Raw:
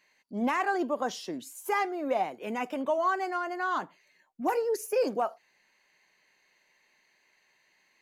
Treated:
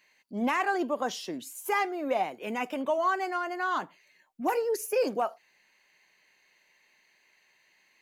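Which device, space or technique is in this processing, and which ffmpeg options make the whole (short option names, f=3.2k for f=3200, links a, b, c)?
presence and air boost: -af "equalizer=f=2.7k:t=o:w=1:g=3.5,highshelf=f=10k:g=5.5"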